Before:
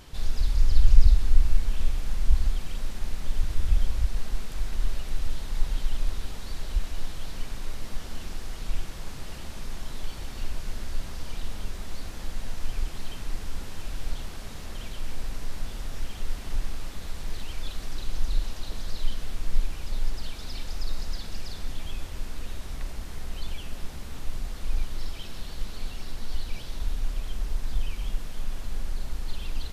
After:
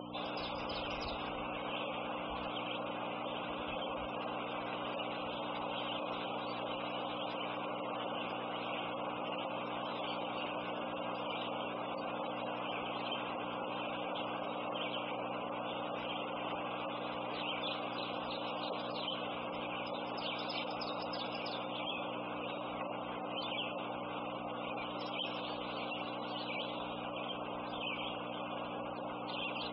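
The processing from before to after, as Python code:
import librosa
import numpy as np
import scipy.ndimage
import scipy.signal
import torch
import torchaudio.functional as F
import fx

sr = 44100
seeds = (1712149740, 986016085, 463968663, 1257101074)

y = fx.add_hum(x, sr, base_hz=60, snr_db=11)
y = fx.cabinet(y, sr, low_hz=500.0, low_slope=12, high_hz=4900.0, hz=(540.0, 780.0, 1100.0, 1800.0, 2700.0, 4300.0), db=(9, 5, 5, -8, 4, -9))
y = fx.spec_gate(y, sr, threshold_db=-15, keep='strong')
y = y * librosa.db_to_amplitude(6.0)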